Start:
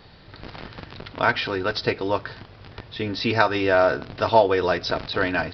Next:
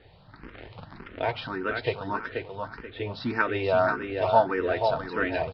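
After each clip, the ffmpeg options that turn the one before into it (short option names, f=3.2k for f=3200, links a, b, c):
-filter_complex "[0:a]lowpass=2.8k,asplit=2[a][b];[b]aecho=0:1:482|964|1446|1928:0.501|0.175|0.0614|0.0215[c];[a][c]amix=inputs=2:normalize=0,asplit=2[d][e];[e]afreqshift=1.7[f];[d][f]amix=inputs=2:normalize=1,volume=-2.5dB"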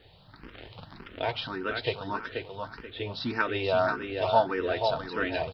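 -af "aexciter=amount=2.7:drive=3.6:freq=2.9k,volume=-2.5dB"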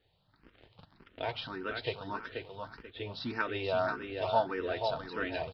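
-af "agate=range=-11dB:threshold=-43dB:ratio=16:detection=peak,volume=-5.5dB"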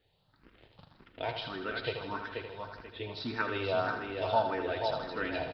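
-af "aecho=1:1:80|160|240|320|400|480|560|640:0.398|0.239|0.143|0.086|0.0516|0.031|0.0186|0.0111"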